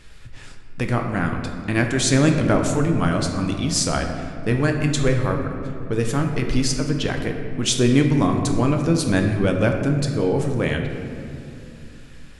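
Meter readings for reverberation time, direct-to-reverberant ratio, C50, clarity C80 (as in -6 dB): 2.6 s, 3.0 dB, 5.0 dB, 6.0 dB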